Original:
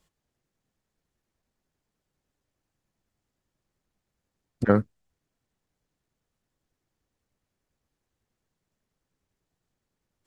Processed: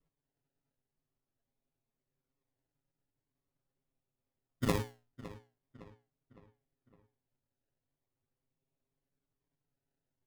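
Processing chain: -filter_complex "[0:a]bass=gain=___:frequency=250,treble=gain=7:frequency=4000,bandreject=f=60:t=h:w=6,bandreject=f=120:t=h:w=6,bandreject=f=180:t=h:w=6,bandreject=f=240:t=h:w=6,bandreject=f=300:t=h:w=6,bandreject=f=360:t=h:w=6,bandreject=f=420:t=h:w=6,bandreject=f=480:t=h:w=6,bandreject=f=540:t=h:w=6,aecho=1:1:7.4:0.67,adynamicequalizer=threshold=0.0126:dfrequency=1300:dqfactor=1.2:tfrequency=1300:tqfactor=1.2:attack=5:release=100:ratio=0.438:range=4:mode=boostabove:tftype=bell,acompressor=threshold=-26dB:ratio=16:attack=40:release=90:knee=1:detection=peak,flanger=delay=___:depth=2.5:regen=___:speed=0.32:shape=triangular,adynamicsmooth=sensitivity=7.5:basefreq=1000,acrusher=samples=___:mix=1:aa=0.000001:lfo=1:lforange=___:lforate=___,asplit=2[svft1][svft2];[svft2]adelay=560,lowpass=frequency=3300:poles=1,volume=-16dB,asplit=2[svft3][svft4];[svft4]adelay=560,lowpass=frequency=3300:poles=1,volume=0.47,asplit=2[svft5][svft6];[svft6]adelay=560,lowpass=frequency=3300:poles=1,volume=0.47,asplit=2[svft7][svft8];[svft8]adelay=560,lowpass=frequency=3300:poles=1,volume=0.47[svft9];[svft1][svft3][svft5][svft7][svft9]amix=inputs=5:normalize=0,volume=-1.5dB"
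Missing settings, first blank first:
-4, 6.5, -31, 27, 27, 0.43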